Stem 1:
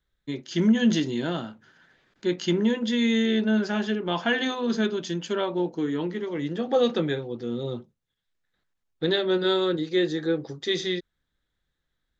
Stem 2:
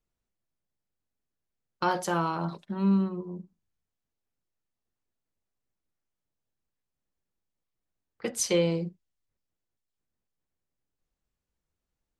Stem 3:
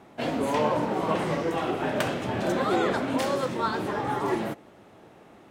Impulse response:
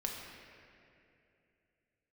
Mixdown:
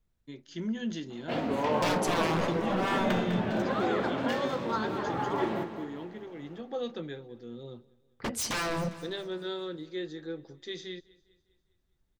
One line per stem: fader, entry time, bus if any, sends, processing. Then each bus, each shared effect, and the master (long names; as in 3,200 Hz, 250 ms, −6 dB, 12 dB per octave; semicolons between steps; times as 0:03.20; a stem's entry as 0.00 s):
−13.0 dB, 0.00 s, no send, echo send −23.5 dB, no processing
+2.0 dB, 0.00 s, no send, echo send −15 dB, bass and treble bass +9 dB, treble −2 dB; wave folding −28 dBFS
−4.5 dB, 1.10 s, no send, echo send −10 dB, speech leveller 2 s; parametric band 10,000 Hz −14.5 dB 0.96 octaves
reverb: not used
echo: repeating echo 202 ms, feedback 50%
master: no processing